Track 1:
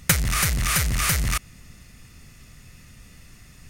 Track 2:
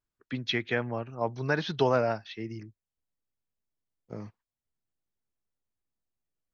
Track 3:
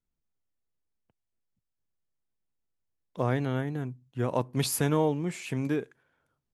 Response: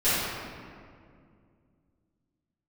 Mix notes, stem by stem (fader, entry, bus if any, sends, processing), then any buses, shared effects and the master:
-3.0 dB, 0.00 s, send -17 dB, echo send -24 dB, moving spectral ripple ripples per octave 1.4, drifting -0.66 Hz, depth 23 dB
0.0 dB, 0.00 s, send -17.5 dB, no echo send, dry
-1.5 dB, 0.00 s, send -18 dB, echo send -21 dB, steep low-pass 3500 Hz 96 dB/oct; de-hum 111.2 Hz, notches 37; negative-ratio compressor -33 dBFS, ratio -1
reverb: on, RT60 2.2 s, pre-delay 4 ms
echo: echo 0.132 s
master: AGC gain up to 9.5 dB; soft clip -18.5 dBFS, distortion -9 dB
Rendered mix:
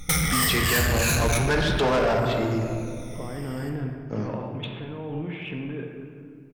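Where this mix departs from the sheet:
stem 2 0.0 dB -> +9.0 dB; master: missing AGC gain up to 9.5 dB

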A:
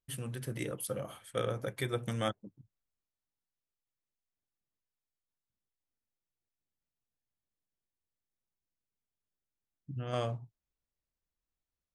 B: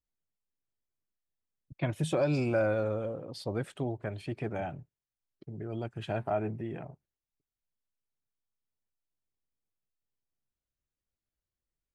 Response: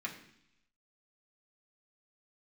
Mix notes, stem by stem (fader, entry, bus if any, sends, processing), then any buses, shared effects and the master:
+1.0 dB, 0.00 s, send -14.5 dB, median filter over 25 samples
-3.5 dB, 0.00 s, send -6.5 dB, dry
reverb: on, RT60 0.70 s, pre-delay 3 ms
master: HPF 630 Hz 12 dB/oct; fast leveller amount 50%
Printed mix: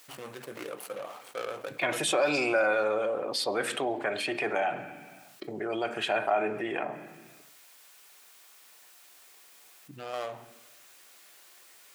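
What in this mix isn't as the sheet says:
stem A +1.0 dB -> -8.5 dB; stem B -3.5 dB -> +4.5 dB

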